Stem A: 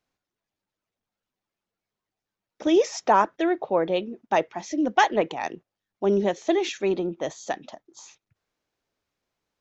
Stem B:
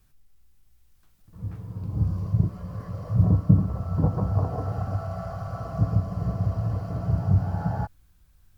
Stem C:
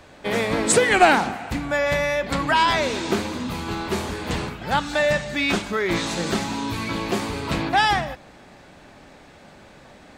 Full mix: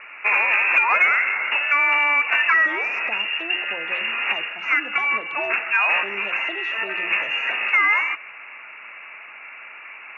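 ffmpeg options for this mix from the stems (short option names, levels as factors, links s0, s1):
-filter_complex "[0:a]bandreject=f=60:t=h:w=6,bandreject=f=120:t=h:w=6,bandreject=f=180:t=h:w=6,bandreject=f=240:t=h:w=6,bandreject=f=300:t=h:w=6,bandreject=f=360:t=h:w=6,bandreject=f=420:t=h:w=6,bandreject=f=480:t=h:w=6,bandreject=f=540:t=h:w=6,acrossover=split=390|2800[s0][s1][s2];[s0]acompressor=threshold=0.02:ratio=4[s3];[s1]acompressor=threshold=0.0562:ratio=4[s4];[s2]acompressor=threshold=0.00562:ratio=4[s5];[s3][s4][s5]amix=inputs=3:normalize=0,volume=0.158,asplit=2[s6][s7];[1:a]aeval=exprs='if(lt(val(0),0),0.708*val(0),val(0))':c=same,volume=0.224[s8];[2:a]lowpass=f=2200:w=0.5412,lowpass=f=2200:w=1.3066,asplit=2[s9][s10];[s10]highpass=f=720:p=1,volume=3.98,asoftclip=type=tanh:threshold=0.668[s11];[s9][s11]amix=inputs=2:normalize=0,lowpass=f=1600:p=1,volume=0.501,volume=1[s12];[s7]apad=whole_len=448803[s13];[s12][s13]sidechaincompress=threshold=0.00501:ratio=10:attack=9.7:release=541[s14];[s8][s14]amix=inputs=2:normalize=0,lowpass=f=2500:t=q:w=0.5098,lowpass=f=2500:t=q:w=0.6013,lowpass=f=2500:t=q:w=0.9,lowpass=f=2500:t=q:w=2.563,afreqshift=-2900,acompressor=threshold=0.0891:ratio=4,volume=1[s15];[s6][s15]amix=inputs=2:normalize=0,acontrast=43,highpass=150,lowpass=5300"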